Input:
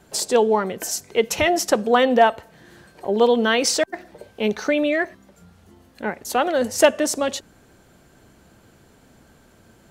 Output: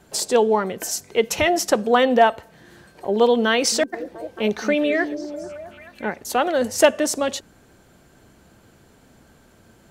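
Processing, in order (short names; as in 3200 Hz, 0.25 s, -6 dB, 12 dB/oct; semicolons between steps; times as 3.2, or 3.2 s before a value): 3.5–6.16 delay with a stepping band-pass 0.218 s, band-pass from 250 Hz, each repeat 0.7 oct, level -6 dB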